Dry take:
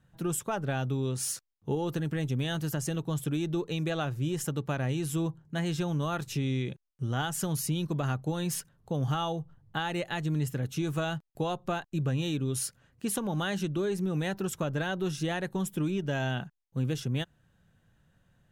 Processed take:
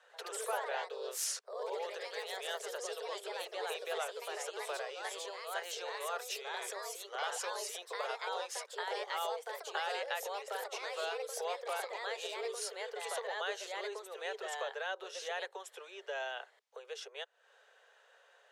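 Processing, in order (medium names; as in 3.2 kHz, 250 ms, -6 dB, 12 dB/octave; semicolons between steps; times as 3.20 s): low-pass 6.3 kHz 12 dB/octave; compression, threshold -45 dBFS, peak gain reduction 18 dB; ever faster or slower copies 97 ms, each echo +2 st, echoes 3; steep high-pass 420 Hz 96 dB/octave; trim +10.5 dB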